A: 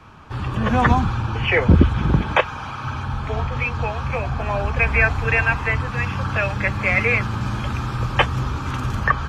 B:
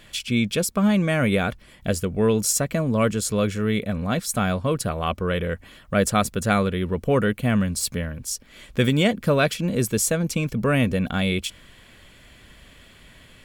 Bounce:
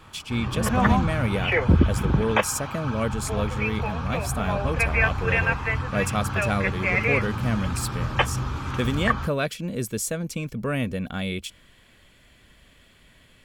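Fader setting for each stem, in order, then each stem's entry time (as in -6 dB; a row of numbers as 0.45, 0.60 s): -4.5, -6.0 dB; 0.00, 0.00 s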